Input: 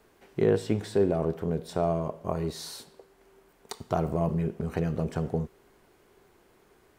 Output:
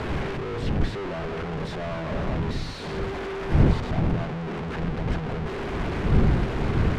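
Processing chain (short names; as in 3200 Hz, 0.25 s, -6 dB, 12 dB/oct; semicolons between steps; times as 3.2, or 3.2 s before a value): infinite clipping; wind noise 150 Hz -26 dBFS; LPF 2700 Hz 12 dB/oct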